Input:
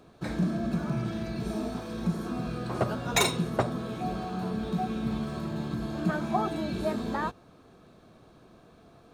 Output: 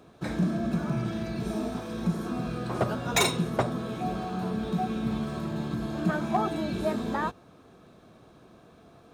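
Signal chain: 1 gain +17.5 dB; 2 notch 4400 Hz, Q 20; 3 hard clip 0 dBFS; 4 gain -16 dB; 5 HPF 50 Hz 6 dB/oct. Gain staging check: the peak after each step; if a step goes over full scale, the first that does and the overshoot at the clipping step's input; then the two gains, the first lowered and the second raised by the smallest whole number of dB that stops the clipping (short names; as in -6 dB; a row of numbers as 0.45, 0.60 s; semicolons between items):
+7.5, +7.5, 0.0, -16.0, -15.0 dBFS; step 1, 7.5 dB; step 1 +9.5 dB, step 4 -8 dB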